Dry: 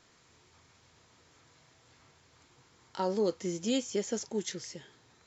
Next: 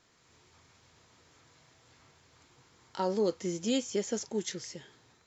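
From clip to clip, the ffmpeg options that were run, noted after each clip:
-af "dynaudnorm=f=170:g=3:m=1.58,volume=0.668"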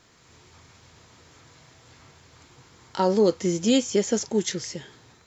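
-af "equalizer=f=64:w=0.35:g=3.5,volume=2.66"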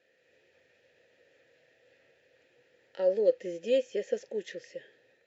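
-filter_complex "[0:a]asplit=3[s0][s1][s2];[s0]bandpass=f=530:t=q:w=8,volume=1[s3];[s1]bandpass=f=1840:t=q:w=8,volume=0.501[s4];[s2]bandpass=f=2480:t=q:w=8,volume=0.355[s5];[s3][s4][s5]amix=inputs=3:normalize=0,volume=1.26"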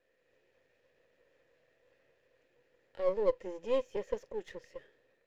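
-filter_complex "[0:a]aeval=exprs='if(lt(val(0),0),0.447*val(0),val(0))':c=same,asplit=2[s0][s1];[s1]adynamicsmooth=sensitivity=7.5:basefreq=2200,volume=0.708[s2];[s0][s2]amix=inputs=2:normalize=0,volume=0.473"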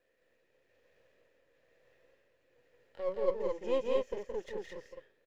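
-filter_complex "[0:a]tremolo=f=1.1:d=0.47,asplit=2[s0][s1];[s1]aecho=0:1:169.1|215.7:0.631|0.794[s2];[s0][s2]amix=inputs=2:normalize=0"

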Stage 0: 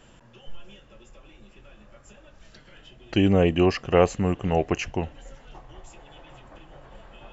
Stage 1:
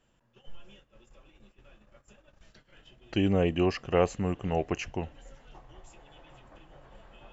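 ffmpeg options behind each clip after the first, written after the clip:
-af "agate=range=0.282:threshold=0.00355:ratio=16:detection=peak,volume=0.501"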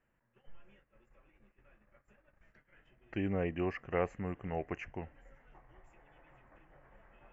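-af "highshelf=f=2800:t=q:w=3:g=-11,volume=0.355"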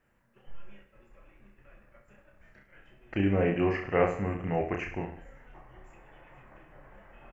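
-af "aecho=1:1:30|64.5|104.2|149.8|202.3:0.631|0.398|0.251|0.158|0.1,volume=2"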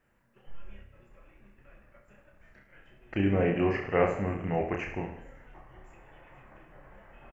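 -filter_complex "[0:a]asplit=6[s0][s1][s2][s3][s4][s5];[s1]adelay=83,afreqshift=33,volume=0.178[s6];[s2]adelay=166,afreqshift=66,volume=0.0912[s7];[s3]adelay=249,afreqshift=99,volume=0.0462[s8];[s4]adelay=332,afreqshift=132,volume=0.0237[s9];[s5]adelay=415,afreqshift=165,volume=0.012[s10];[s0][s6][s7][s8][s9][s10]amix=inputs=6:normalize=0"

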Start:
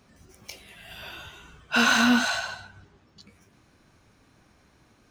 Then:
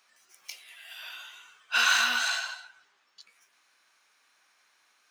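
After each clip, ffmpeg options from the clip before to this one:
-af "highpass=1300"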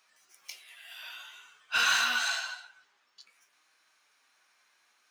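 -filter_complex "[0:a]flanger=delay=6.3:depth=2.3:regen=67:speed=0.53:shape=sinusoidal,asplit=2[s0][s1];[s1]aeval=exprs='0.0668*(abs(mod(val(0)/0.0668+3,4)-2)-1)':c=same,volume=0.316[s2];[s0][s2]amix=inputs=2:normalize=0"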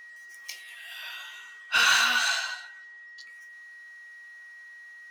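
-af "aeval=exprs='val(0)+0.00355*sin(2*PI*1900*n/s)':c=same,volume=1.68"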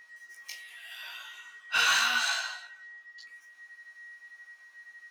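-af "flanger=delay=17:depth=2.5:speed=0.86"

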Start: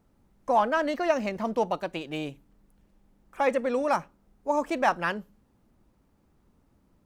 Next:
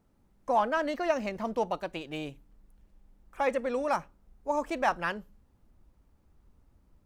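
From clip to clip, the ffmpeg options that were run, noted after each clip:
-af "asubboost=boost=3:cutoff=100,volume=0.708"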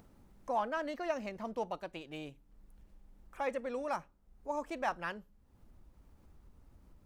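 -af "acompressor=mode=upward:threshold=0.01:ratio=2.5,volume=0.422"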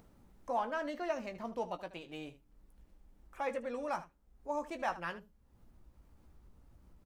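-af "aecho=1:1:17|77:0.355|0.178,volume=0.841"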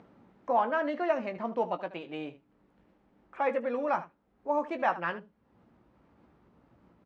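-af "highpass=170,lowpass=2500,volume=2.51"

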